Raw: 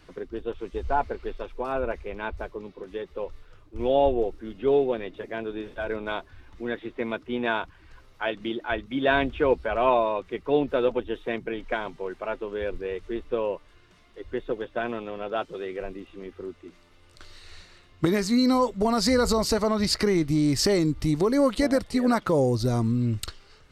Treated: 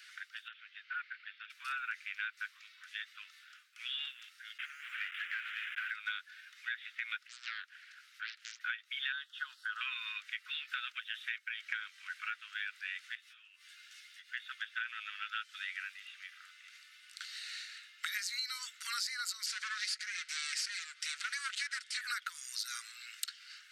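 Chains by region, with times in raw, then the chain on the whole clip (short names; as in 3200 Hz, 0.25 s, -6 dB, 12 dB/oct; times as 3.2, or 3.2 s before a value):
0.48–1.5 HPF 1500 Hz + air absorption 350 m
4.58–5.91 delta modulation 16 kbps, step -38 dBFS + compressor 10:1, threshold -27 dBFS + sample leveller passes 1
7.27–8.61 compressor 2:1, threshold -50 dBFS + Doppler distortion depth 0.89 ms
9.12–9.81 dynamic EQ 3400 Hz, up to +6 dB, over -46 dBFS, Q 2.2 + fixed phaser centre 970 Hz, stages 4
13.15–14.29 high shelf 2800 Hz +8.5 dB + compressor 8:1, threshold -42 dBFS + ensemble effect
19.46–22.01 minimum comb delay 5.3 ms + LPF 8900 Hz 24 dB/oct
whole clip: steep high-pass 1400 Hz 72 dB/oct; compressor 10:1, threshold -41 dBFS; gain +6 dB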